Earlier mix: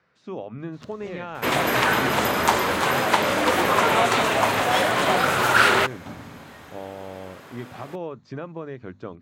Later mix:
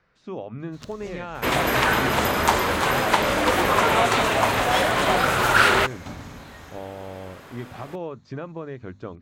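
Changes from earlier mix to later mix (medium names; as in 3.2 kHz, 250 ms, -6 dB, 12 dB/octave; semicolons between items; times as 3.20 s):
first sound: add treble shelf 3.3 kHz +10 dB; master: remove high-pass 110 Hz 12 dB/octave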